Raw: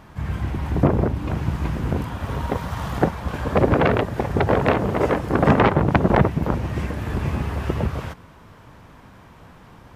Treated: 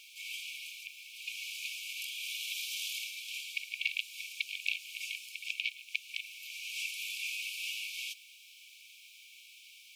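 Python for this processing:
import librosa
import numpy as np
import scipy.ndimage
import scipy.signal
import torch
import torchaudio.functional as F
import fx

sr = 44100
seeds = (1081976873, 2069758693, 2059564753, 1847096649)

y = fx.rider(x, sr, range_db=5, speed_s=0.5)
y = fx.quant_dither(y, sr, seeds[0], bits=12, dither='triangular')
y = fx.brickwall_highpass(y, sr, low_hz=2200.0)
y = y * librosa.db_to_amplitude(2.5)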